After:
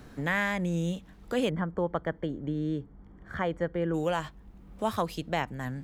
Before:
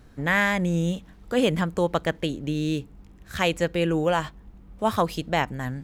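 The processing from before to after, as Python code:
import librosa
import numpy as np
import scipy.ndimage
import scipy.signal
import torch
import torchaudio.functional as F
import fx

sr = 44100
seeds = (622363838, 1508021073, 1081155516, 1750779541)

y = fx.savgol(x, sr, points=41, at=(1.49, 3.93), fade=0.02)
y = fx.band_squash(y, sr, depth_pct=40)
y = y * librosa.db_to_amplitude(-6.0)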